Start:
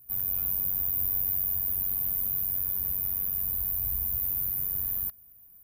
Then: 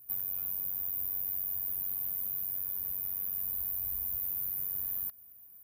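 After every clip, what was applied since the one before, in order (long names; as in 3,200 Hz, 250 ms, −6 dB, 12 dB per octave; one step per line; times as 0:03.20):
low-shelf EQ 160 Hz −10 dB
downward compressor, threshold −30 dBFS, peak gain reduction 7 dB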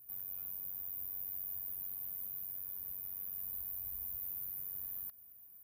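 brickwall limiter −28.5 dBFS, peak gain reduction 9 dB
level −3 dB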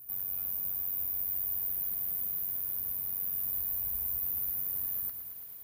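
feedback echo at a low word length 110 ms, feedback 80%, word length 11 bits, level −10 dB
level +8 dB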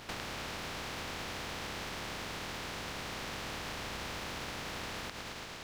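compressing power law on the bin magnitudes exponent 0.26
downward compressor 6 to 1, threshold −38 dBFS, peak gain reduction 8 dB
high-frequency loss of the air 140 metres
level +10 dB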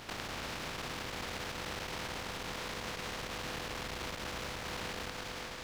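delay that swaps between a low-pass and a high-pass 178 ms, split 1,900 Hz, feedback 87%, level −9.5 dB
saturating transformer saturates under 350 Hz
level +1 dB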